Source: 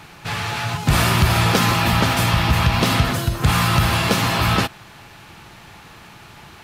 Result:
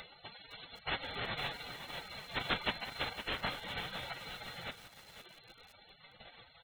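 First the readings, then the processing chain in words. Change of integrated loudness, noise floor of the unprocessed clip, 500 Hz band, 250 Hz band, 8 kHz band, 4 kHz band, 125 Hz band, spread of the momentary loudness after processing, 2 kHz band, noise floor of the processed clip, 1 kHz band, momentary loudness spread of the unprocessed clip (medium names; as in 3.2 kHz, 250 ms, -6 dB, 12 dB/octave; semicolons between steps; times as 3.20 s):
-21.5 dB, -43 dBFS, -20.5 dB, -27.5 dB, -32.0 dB, -17.5 dB, -33.0 dB, 19 LU, -18.5 dB, -62 dBFS, -22.5 dB, 8 LU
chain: comb filter that takes the minimum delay 1.4 ms; flange 0.38 Hz, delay 3.5 ms, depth 2.9 ms, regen +5%; in parallel at +1 dB: compression 10:1, threshold -29 dBFS, peak gain reduction 14 dB; on the sum: frequency-shifting echo 136 ms, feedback 33%, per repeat -46 Hz, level -18 dB; dynamic bell 170 Hz, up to -3 dB, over -34 dBFS, Q 7.7; flutter echo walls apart 7.4 m, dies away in 0.24 s; upward compressor, threshold -20 dBFS; treble shelf 2.6 kHz +6.5 dB; comb 2.8 ms, depth 40%; frequency inversion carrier 3.9 kHz; spectral gate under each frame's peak -25 dB weak; bit-crushed delay 509 ms, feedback 55%, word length 8-bit, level -9 dB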